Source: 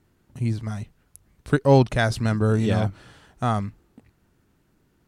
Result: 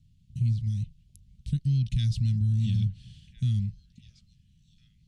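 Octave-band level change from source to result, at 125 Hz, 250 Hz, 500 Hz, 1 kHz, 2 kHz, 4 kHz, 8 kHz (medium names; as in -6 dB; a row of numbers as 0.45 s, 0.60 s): -1.0 dB, -10.0 dB, under -40 dB, under -40 dB, under -25 dB, -7.5 dB, under -10 dB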